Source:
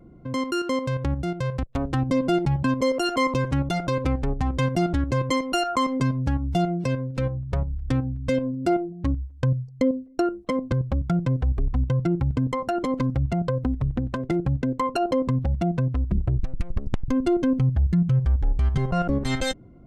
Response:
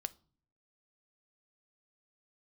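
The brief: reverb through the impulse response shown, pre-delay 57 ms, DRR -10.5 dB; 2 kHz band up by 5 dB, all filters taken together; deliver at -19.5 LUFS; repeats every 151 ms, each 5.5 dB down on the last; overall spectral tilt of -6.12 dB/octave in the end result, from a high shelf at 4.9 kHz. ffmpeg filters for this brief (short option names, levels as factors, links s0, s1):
-filter_complex "[0:a]equalizer=f=2000:t=o:g=7,highshelf=f=4900:g=-5,aecho=1:1:151|302|453|604|755|906|1057:0.531|0.281|0.149|0.079|0.0419|0.0222|0.0118,asplit=2[s0][s1];[1:a]atrim=start_sample=2205,adelay=57[s2];[s1][s2]afir=irnorm=-1:irlink=0,volume=3.98[s3];[s0][s3]amix=inputs=2:normalize=0,volume=0.473"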